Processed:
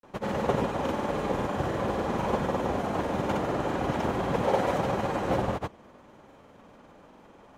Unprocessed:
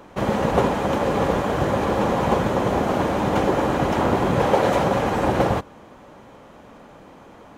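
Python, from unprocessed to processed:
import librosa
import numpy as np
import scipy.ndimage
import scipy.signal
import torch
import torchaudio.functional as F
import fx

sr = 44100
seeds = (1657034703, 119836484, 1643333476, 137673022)

y = fx.granulator(x, sr, seeds[0], grain_ms=100.0, per_s=20.0, spray_ms=100.0, spread_st=0)
y = y * 10.0 ** (-6.5 / 20.0)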